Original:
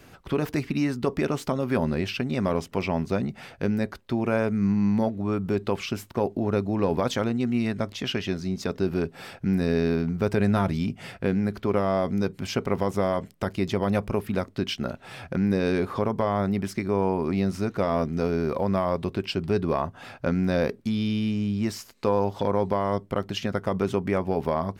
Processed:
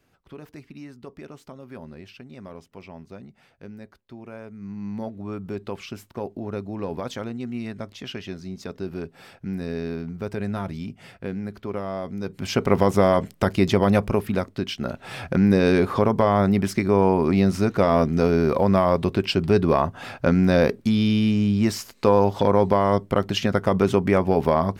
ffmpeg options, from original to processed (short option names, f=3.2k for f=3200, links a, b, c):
-af "volume=14dB,afade=t=in:st=4.58:d=0.59:silence=0.334965,afade=t=in:st=12.21:d=0.53:silence=0.223872,afade=t=out:st=13.7:d=1.03:silence=0.398107,afade=t=in:st=14.73:d=0.43:silence=0.446684"